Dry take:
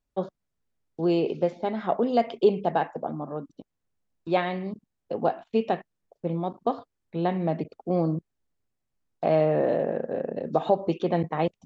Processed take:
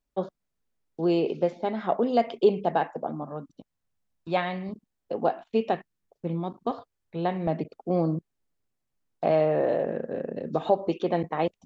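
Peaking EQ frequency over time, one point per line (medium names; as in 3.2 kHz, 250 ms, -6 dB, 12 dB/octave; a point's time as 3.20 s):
peaking EQ -6 dB 0.96 oct
94 Hz
from 3.23 s 370 Hz
from 4.69 s 120 Hz
from 5.75 s 620 Hz
from 6.71 s 250 Hz
from 7.47 s 63 Hz
from 9.31 s 200 Hz
from 9.86 s 760 Hz
from 10.65 s 140 Hz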